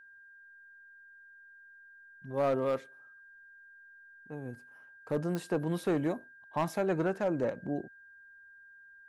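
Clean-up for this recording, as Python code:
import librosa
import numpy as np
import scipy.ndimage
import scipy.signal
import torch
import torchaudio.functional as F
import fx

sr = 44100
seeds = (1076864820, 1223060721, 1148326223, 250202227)

y = fx.fix_declip(x, sr, threshold_db=-22.5)
y = fx.fix_declick_ar(y, sr, threshold=10.0)
y = fx.notch(y, sr, hz=1600.0, q=30.0)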